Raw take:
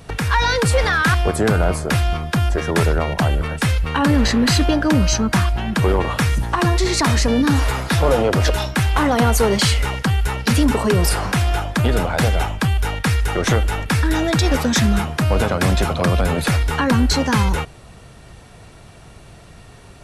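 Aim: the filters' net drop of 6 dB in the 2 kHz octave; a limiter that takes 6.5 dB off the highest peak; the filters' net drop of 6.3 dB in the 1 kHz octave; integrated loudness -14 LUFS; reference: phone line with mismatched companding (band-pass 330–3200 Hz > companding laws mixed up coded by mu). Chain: peaking EQ 1 kHz -7 dB; peaking EQ 2 kHz -4.5 dB; peak limiter -14 dBFS; band-pass 330–3200 Hz; companding laws mixed up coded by mu; trim +13.5 dB

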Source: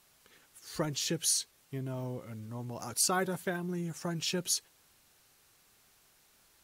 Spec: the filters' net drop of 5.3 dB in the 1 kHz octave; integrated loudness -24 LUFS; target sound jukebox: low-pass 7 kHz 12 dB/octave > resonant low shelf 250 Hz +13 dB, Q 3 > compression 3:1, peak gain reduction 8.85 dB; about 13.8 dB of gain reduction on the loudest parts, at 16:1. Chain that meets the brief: peaking EQ 1 kHz -6 dB; compression 16:1, threshold -38 dBFS; low-pass 7 kHz 12 dB/octave; resonant low shelf 250 Hz +13 dB, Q 3; compression 3:1, threshold -32 dBFS; trim +11 dB

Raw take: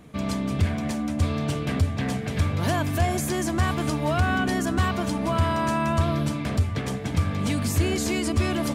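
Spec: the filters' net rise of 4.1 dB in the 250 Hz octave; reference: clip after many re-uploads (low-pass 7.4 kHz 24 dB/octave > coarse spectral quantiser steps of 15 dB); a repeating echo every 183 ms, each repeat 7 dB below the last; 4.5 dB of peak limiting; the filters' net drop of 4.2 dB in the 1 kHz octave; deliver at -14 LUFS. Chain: peaking EQ 250 Hz +5.5 dB; peaking EQ 1 kHz -6 dB; peak limiter -15.5 dBFS; low-pass 7.4 kHz 24 dB/octave; feedback delay 183 ms, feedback 45%, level -7 dB; coarse spectral quantiser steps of 15 dB; trim +10 dB

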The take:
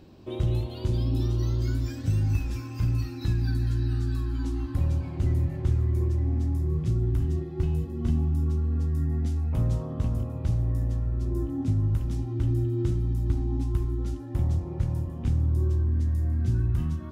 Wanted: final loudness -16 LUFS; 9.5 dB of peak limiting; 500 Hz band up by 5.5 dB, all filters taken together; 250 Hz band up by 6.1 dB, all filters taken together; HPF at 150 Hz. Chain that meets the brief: high-pass 150 Hz; peaking EQ 250 Hz +7.5 dB; peaking EQ 500 Hz +4 dB; trim +16.5 dB; peak limiter -7.5 dBFS

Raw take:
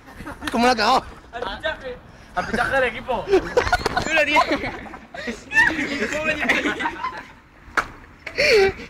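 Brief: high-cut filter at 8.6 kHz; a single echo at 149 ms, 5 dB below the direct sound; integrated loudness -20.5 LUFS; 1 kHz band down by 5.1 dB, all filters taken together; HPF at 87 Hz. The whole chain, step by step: high-pass 87 Hz; low-pass 8.6 kHz; peaking EQ 1 kHz -7 dB; delay 149 ms -5 dB; trim +1 dB

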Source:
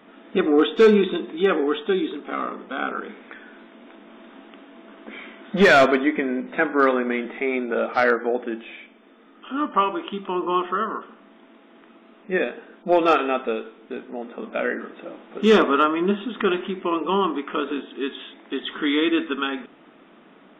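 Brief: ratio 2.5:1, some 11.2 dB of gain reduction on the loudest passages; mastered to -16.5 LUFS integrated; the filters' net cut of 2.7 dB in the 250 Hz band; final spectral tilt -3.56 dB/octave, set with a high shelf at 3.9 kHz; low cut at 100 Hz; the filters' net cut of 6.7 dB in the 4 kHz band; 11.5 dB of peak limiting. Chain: high-pass 100 Hz; peaking EQ 250 Hz -3.5 dB; treble shelf 3.9 kHz -7 dB; peaking EQ 4 kHz -5 dB; compression 2.5:1, threshold -29 dBFS; trim +19 dB; peak limiter -6 dBFS

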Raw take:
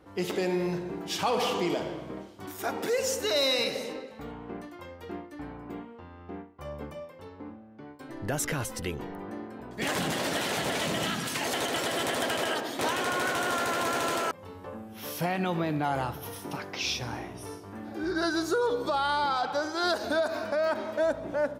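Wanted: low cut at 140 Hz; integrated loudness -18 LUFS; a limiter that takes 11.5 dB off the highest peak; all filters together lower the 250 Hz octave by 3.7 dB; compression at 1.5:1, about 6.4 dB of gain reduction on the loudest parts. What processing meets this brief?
high-pass 140 Hz; peaking EQ 250 Hz -5 dB; compression 1.5:1, threshold -42 dBFS; trim +25 dB; peak limiter -9 dBFS

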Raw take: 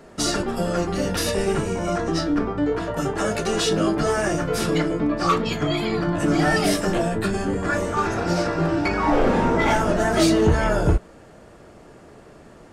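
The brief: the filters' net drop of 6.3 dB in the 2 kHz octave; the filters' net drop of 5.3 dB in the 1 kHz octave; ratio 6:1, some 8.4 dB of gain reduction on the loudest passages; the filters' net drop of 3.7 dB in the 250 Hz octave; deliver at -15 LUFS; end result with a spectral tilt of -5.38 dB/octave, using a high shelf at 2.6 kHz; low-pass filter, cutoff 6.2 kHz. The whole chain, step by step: low-pass 6.2 kHz; peaking EQ 250 Hz -5 dB; peaking EQ 1 kHz -5 dB; peaking EQ 2 kHz -4.5 dB; treble shelf 2.6 kHz -4 dB; compression 6:1, threshold -23 dBFS; trim +13.5 dB

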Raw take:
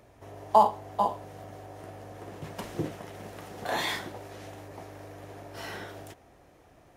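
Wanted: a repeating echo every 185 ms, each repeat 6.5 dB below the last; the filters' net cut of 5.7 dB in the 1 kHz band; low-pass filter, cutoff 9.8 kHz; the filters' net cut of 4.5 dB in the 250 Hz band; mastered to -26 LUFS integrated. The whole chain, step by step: low-pass 9.8 kHz; peaking EQ 250 Hz -6 dB; peaking EQ 1 kHz -6.5 dB; feedback delay 185 ms, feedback 47%, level -6.5 dB; trim +8.5 dB

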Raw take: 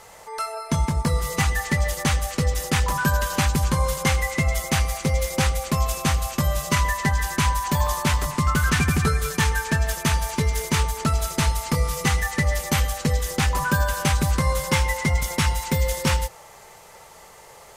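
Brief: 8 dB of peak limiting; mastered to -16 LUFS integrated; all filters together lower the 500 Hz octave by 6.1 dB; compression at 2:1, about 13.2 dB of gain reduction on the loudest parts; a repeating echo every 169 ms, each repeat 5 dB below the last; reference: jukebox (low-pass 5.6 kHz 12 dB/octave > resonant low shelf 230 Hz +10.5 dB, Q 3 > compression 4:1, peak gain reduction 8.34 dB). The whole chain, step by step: peaking EQ 500 Hz -4 dB; compression 2:1, threshold -42 dBFS; peak limiter -28 dBFS; low-pass 5.6 kHz 12 dB/octave; resonant low shelf 230 Hz +10.5 dB, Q 3; feedback delay 169 ms, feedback 56%, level -5 dB; compression 4:1, threshold -27 dBFS; trim +16.5 dB

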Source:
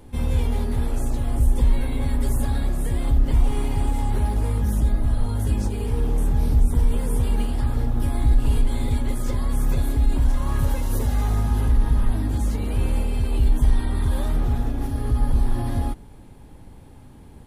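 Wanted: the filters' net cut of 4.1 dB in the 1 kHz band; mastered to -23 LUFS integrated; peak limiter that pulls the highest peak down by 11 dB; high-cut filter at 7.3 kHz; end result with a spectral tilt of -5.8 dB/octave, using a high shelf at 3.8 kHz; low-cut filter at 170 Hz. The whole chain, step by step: high-pass 170 Hz; low-pass 7.3 kHz; peaking EQ 1 kHz -5.5 dB; treble shelf 3.8 kHz +3 dB; trim +14.5 dB; peak limiter -14.5 dBFS

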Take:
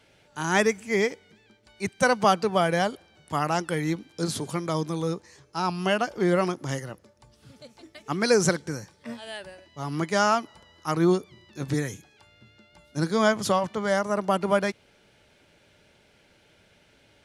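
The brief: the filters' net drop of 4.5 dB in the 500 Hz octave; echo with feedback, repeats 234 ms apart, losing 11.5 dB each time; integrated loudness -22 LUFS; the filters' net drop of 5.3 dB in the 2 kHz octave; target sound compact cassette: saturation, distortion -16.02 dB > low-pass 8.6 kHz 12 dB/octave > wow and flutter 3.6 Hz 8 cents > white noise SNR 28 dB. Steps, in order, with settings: peaking EQ 500 Hz -5.5 dB; peaking EQ 2 kHz -7 dB; feedback delay 234 ms, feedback 27%, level -11.5 dB; saturation -18 dBFS; low-pass 8.6 kHz 12 dB/octave; wow and flutter 3.6 Hz 8 cents; white noise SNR 28 dB; trim +8.5 dB

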